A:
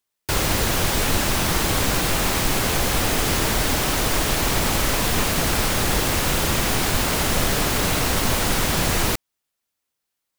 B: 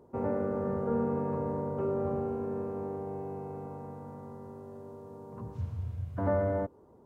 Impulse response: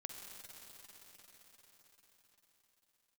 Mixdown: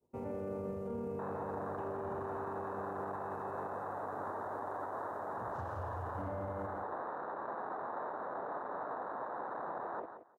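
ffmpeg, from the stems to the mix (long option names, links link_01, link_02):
-filter_complex "[0:a]lowpass=frequency=1100:width=0.5412,lowpass=frequency=1100:width=1.3066,afwtdn=0.0501,highpass=770,adelay=900,volume=-5.5dB,asplit=2[link_01][link_02];[link_02]volume=-11dB[link_03];[1:a]agate=range=-33dB:threshold=-49dB:ratio=3:detection=peak,highshelf=frequency=2300:gain=-7,aexciter=amount=3:drive=8.5:freq=2300,volume=-8dB,asplit=2[link_04][link_05];[link_05]volume=-6.5dB[link_06];[link_03][link_06]amix=inputs=2:normalize=0,aecho=0:1:174|348|522:1|0.16|0.0256[link_07];[link_01][link_04][link_07]amix=inputs=3:normalize=0,alimiter=level_in=8dB:limit=-24dB:level=0:latency=1:release=28,volume=-8dB"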